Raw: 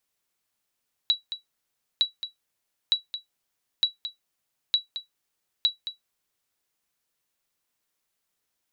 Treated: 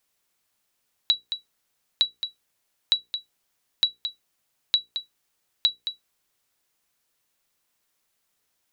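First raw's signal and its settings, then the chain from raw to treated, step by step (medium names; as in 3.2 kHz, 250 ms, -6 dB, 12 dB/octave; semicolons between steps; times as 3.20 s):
sonar ping 3.91 kHz, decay 0.14 s, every 0.91 s, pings 6, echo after 0.22 s, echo -11.5 dB -12.5 dBFS
hum notches 60/120/180/240/300/360/420/480 Hz; in parallel at -1.5 dB: compression, threshold -31 dBFS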